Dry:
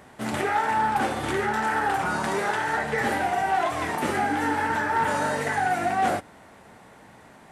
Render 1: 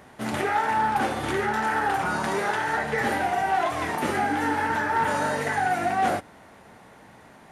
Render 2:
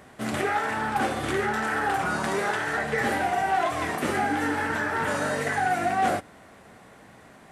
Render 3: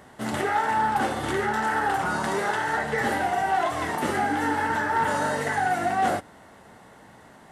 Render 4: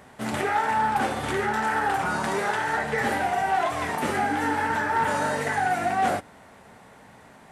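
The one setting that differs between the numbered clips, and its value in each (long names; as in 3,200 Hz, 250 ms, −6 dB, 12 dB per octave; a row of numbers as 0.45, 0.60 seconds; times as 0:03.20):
notch filter, centre frequency: 7,800, 890, 2,400, 330 Hertz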